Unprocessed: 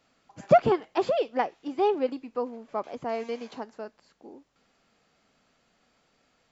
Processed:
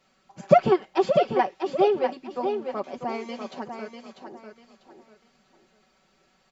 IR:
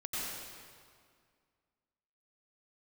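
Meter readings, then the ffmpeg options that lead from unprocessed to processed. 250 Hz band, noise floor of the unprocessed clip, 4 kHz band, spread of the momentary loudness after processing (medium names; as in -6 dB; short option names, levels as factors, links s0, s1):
+3.5 dB, -70 dBFS, +3.5 dB, 20 LU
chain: -af "aecho=1:1:5.3:0.83,aecho=1:1:645|1290|1935:0.447|0.121|0.0326"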